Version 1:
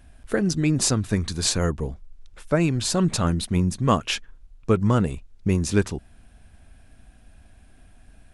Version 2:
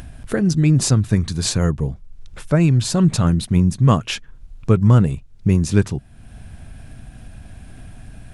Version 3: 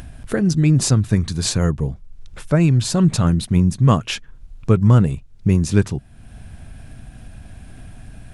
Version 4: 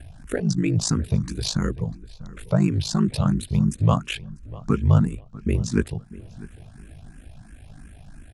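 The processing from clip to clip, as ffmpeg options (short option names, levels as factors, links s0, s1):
-filter_complex "[0:a]equalizer=f=130:t=o:w=1.1:g=10.5,asplit=2[s0][s1];[s1]acompressor=mode=upward:threshold=0.0891:ratio=2.5,volume=1.41[s2];[s0][s2]amix=inputs=2:normalize=0,volume=0.447"
-af anull
-filter_complex "[0:a]aeval=exprs='val(0)*sin(2*PI*26*n/s)':c=same,asplit=2[s0][s1];[s1]adelay=646,lowpass=f=2900:p=1,volume=0.119,asplit=2[s2][s3];[s3]adelay=646,lowpass=f=2900:p=1,volume=0.3,asplit=2[s4][s5];[s5]adelay=646,lowpass=f=2900:p=1,volume=0.3[s6];[s0][s2][s4][s6]amix=inputs=4:normalize=0,asplit=2[s7][s8];[s8]afreqshift=2.9[s9];[s7][s9]amix=inputs=2:normalize=1"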